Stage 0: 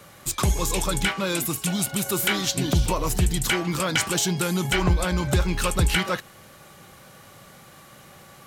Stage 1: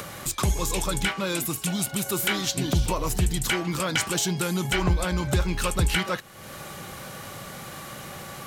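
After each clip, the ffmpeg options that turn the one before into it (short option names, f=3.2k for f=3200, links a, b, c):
-af "acompressor=mode=upward:threshold=-25dB:ratio=2.5,volume=-2dB"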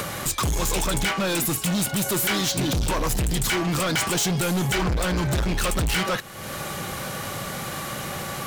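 -af "asoftclip=type=hard:threshold=-28.5dB,volume=7.5dB"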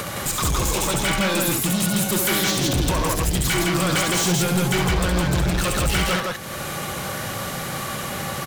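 -af "aecho=1:1:67.06|163.3:0.562|0.794"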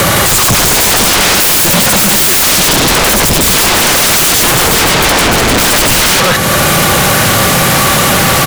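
-af "aeval=exprs='0.211*sin(PI/2*4.47*val(0)/0.211)':c=same,volume=8dB"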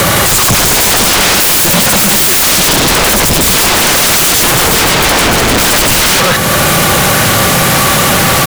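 -af "acrusher=bits=2:mix=0:aa=0.5"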